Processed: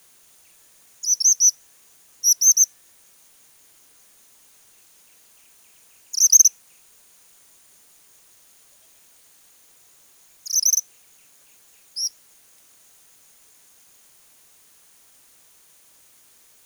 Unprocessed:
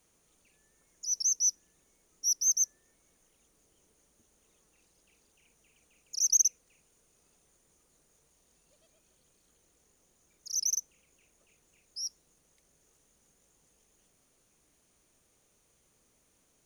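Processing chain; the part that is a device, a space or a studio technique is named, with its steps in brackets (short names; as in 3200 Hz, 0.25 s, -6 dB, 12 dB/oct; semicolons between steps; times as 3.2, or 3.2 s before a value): turntable without a phono preamp (RIAA curve recording; white noise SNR 31 dB); gain +2 dB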